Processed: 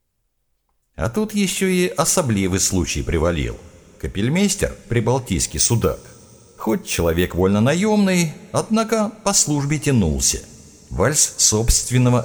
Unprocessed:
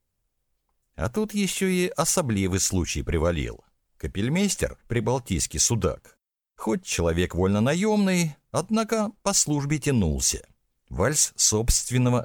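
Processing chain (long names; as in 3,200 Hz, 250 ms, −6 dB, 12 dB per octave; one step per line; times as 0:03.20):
coupled-rooms reverb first 0.37 s, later 4.9 s, from −20 dB, DRR 13.5 dB
0:05.46–0:07.41: bad sample-rate conversion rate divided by 3×, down filtered, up hold
level +5.5 dB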